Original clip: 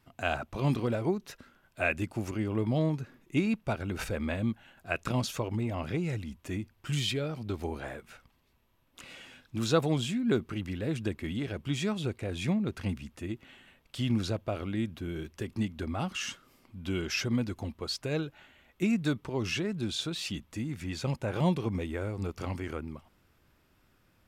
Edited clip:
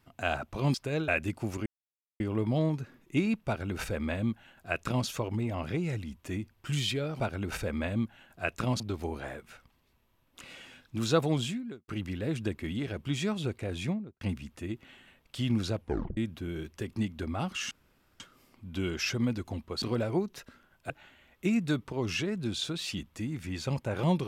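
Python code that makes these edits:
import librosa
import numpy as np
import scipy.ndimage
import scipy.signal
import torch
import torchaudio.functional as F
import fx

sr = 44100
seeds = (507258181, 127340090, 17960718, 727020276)

y = fx.studio_fade_out(x, sr, start_s=12.35, length_s=0.46)
y = fx.edit(y, sr, fx.swap(start_s=0.74, length_s=1.08, other_s=17.93, other_length_s=0.34),
    fx.insert_silence(at_s=2.4, length_s=0.54),
    fx.duplicate(start_s=3.67, length_s=1.6, to_s=7.4),
    fx.fade_out_span(start_s=10.08, length_s=0.4, curve='qua'),
    fx.tape_stop(start_s=14.38, length_s=0.39),
    fx.insert_room_tone(at_s=16.31, length_s=0.49), tone=tone)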